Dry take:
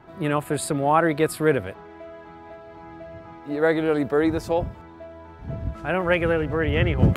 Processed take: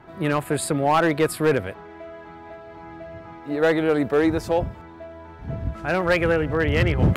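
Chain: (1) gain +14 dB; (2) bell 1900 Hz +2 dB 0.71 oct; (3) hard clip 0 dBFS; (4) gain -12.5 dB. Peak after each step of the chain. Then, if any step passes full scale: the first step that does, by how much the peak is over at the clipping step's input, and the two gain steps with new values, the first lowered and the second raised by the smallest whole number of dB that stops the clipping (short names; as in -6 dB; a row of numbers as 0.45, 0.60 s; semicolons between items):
+9.0, +9.5, 0.0, -12.5 dBFS; step 1, 9.5 dB; step 1 +4 dB, step 4 -2.5 dB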